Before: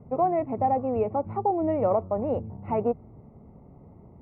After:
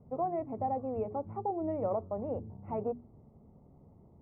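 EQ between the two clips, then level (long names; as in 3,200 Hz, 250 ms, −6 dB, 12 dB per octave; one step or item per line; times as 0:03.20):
low-pass filter 1,300 Hz 6 dB per octave
high-frequency loss of the air 150 metres
mains-hum notches 60/120/180/240/300/360/420 Hz
−7.5 dB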